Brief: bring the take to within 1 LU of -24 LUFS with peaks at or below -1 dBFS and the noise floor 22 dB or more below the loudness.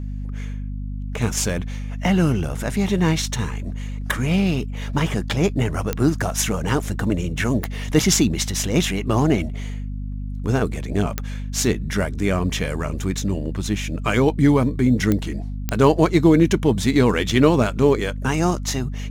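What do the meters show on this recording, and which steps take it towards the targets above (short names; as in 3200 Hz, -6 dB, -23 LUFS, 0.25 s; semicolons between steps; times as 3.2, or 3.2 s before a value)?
clicks 5; hum 50 Hz; harmonics up to 250 Hz; hum level -26 dBFS; loudness -21.0 LUFS; peak -3.0 dBFS; loudness target -24.0 LUFS
-> de-click; notches 50/100/150/200/250 Hz; gain -3 dB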